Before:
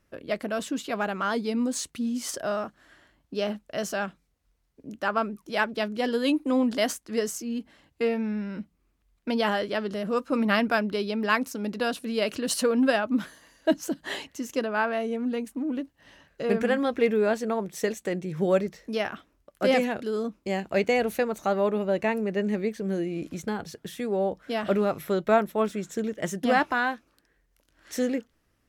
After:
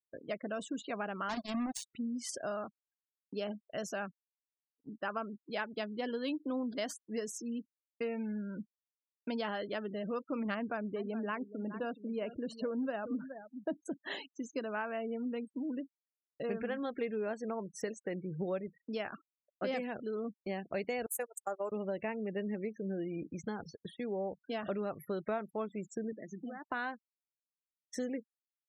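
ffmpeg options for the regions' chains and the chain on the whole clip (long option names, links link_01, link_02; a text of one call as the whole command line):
ffmpeg -i in.wav -filter_complex "[0:a]asettb=1/sr,asplit=3[link_01][link_02][link_03];[link_01]atrim=end=1.294[link_04];[link_02]atrim=start=1.29:end=1.91,asetpts=PTS-STARTPTS,afade=type=in:duration=0.004:curve=qsin,afade=type=out:start_time=0.616:duration=0.004:curve=qsin,lowshelf=frequency=100:gain=5,aecho=1:1:1.1:0.95,atrim=end_sample=27342,acrusher=bits=3:mix=0:aa=0.5[link_05];[link_03]atrim=start=1.906[link_06];[link_04][link_05]acrossfade=duration=0.004:curve1=hsin:curve2=qsin[link_07];[link_07][link_06]acrossfade=duration=0.004:curve1=qsin:curve2=hsin,asettb=1/sr,asplit=3[link_08][link_09][link_10];[link_08]atrim=end=10.544[link_11];[link_09]atrim=start=10.54:end=13.86,asetpts=PTS-STARTPTS,afade=type=in:duration=0.004:curve=qsin,afade=type=out:start_time=3.316:duration=0.004:curve=qsin,lowpass=frequency=1200:poles=1,aecho=1:1:420:0.178,atrim=end_sample=146412[link_12];[link_10]atrim=start=13.856[link_13];[link_11][link_12]acrossfade=duration=0.004:curve1=hsin:curve2=qsin[link_14];[link_14][link_13]acrossfade=duration=0.004:curve1=qsin:curve2=hsin,asettb=1/sr,asplit=3[link_15][link_16][link_17];[link_15]atrim=end=21.064[link_18];[link_16]atrim=start=21.06:end=21.72,asetpts=PTS-STARTPTS,afade=type=in:duration=0.004:curve=qsin,afade=type=out:start_time=0.656:duration=0.004:curve=qsin,highpass=410,highshelf=frequency=6000:width_type=q:width=3:gain=12.5,agate=range=-24dB:threshold=-28dB:ratio=16:release=100:detection=peak[link_19];[link_17]atrim=start=21.716[link_20];[link_18][link_19]acrossfade=duration=0.004:curve1=hsin:curve2=qsin[link_21];[link_21][link_20]acrossfade=duration=0.004:curve1=qsin:curve2=hsin,asettb=1/sr,asplit=3[link_22][link_23][link_24];[link_22]atrim=end=26.124[link_25];[link_23]atrim=start=26.12:end=26.67,asetpts=PTS-STARTPTS,afade=type=in:duration=0.004:curve=qsin,afade=type=out:start_time=0.546:duration=0.004:curve=qsin,acompressor=threshold=-35dB:ratio=10:attack=3.2:release=140:knee=1:detection=peak,highpass=170,equalizer=frequency=220:width_type=q:width=4:gain=8,equalizer=frequency=330:width_type=q:width=4:gain=3,equalizer=frequency=600:width_type=q:width=4:gain=-3,lowpass=frequency=6800:width=0.5412,lowpass=frequency=6800:width=1.3066[link_26];[link_24]atrim=start=26.666[link_27];[link_25][link_26]acrossfade=duration=0.004:curve1=hsin:curve2=qsin[link_28];[link_28][link_27]acrossfade=duration=0.004:curve1=qsin:curve2=hsin,afftfilt=real='re*gte(hypot(re,im),0.0158)':imag='im*gte(hypot(re,im),0.0158)':win_size=1024:overlap=0.75,agate=range=-33dB:threshold=-41dB:ratio=3:detection=peak,acompressor=threshold=-28dB:ratio=3,volume=-6.5dB" out.wav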